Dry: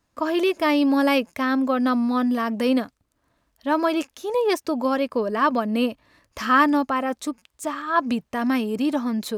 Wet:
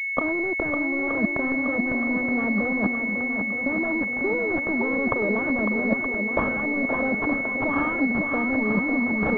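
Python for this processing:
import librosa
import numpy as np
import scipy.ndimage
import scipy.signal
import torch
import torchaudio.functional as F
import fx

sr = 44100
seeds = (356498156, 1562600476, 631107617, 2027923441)

p1 = fx.self_delay(x, sr, depth_ms=0.56)
p2 = scipy.signal.sosfilt(scipy.signal.butter(16, 190.0, 'highpass', fs=sr, output='sos'), p1)
p3 = fx.leveller(p2, sr, passes=5)
p4 = fx.over_compress(p3, sr, threshold_db=-18.0, ratio=-1.0)
p5 = p4 + fx.echo_swing(p4, sr, ms=922, ratio=1.5, feedback_pct=53, wet_db=-6.5, dry=0)
p6 = fx.pwm(p5, sr, carrier_hz=2200.0)
y = F.gain(torch.from_numpy(p6), -7.5).numpy()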